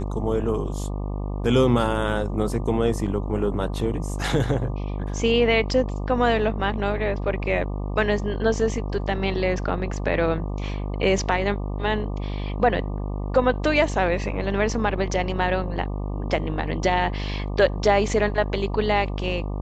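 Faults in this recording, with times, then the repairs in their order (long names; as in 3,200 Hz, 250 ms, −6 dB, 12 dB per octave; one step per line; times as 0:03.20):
mains buzz 50 Hz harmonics 24 −28 dBFS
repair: hum removal 50 Hz, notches 24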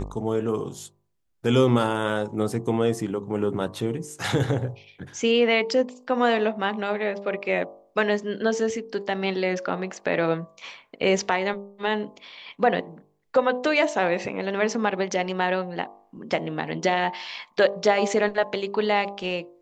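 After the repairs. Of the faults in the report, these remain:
none of them is left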